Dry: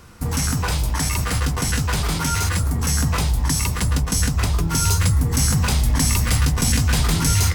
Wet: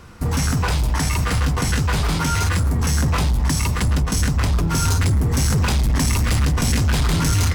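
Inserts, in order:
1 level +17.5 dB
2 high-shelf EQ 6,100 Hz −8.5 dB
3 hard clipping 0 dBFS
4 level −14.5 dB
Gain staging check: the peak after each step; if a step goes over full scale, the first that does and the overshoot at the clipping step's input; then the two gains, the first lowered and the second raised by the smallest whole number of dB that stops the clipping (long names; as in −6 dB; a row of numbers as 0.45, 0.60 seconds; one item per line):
+10.0, +9.0, 0.0, −14.5 dBFS
step 1, 9.0 dB
step 1 +8.5 dB, step 4 −5.5 dB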